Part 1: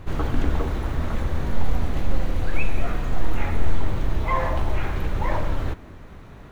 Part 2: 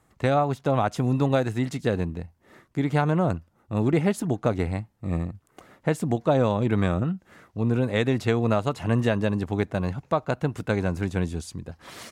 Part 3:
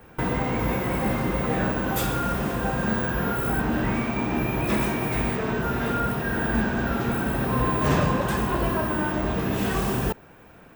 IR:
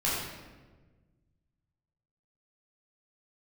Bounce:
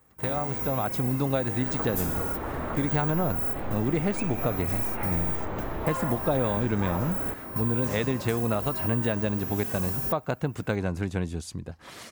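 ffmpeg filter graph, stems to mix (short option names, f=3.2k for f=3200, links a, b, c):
-filter_complex "[0:a]highshelf=f=3.7k:g=-10,asplit=2[a][b];[b]highpass=f=720:p=1,volume=24dB,asoftclip=type=tanh:threshold=-5.5dB[c];[a][c]amix=inputs=2:normalize=0,lowpass=f=1k:p=1,volume=-6dB,adelay=1600,volume=-6.5dB[d];[1:a]dynaudnorm=f=140:g=11:m=12.5dB,volume=-2.5dB,asplit=2[e][f];[2:a]aexciter=amount=3.1:drive=7.7:freq=5.1k,volume=-6dB[g];[f]apad=whole_len=474254[h];[g][h]sidechaingate=range=-16dB:threshold=-40dB:ratio=16:detection=peak[i];[d][e][i]amix=inputs=3:normalize=0,acompressor=threshold=-31dB:ratio=2"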